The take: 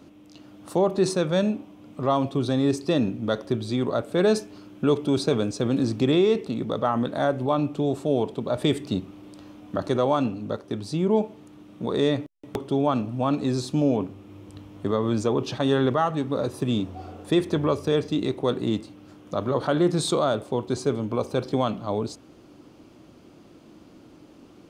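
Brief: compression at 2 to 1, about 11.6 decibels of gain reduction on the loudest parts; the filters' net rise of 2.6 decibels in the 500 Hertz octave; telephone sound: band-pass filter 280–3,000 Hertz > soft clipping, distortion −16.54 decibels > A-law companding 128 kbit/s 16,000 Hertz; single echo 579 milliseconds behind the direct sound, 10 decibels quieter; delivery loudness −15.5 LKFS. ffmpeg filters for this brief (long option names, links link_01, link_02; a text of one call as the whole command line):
ffmpeg -i in.wav -af "equalizer=frequency=500:width_type=o:gain=4,acompressor=threshold=-36dB:ratio=2,highpass=280,lowpass=3000,aecho=1:1:579:0.316,asoftclip=threshold=-26dB,volume=21dB" -ar 16000 -c:a pcm_alaw out.wav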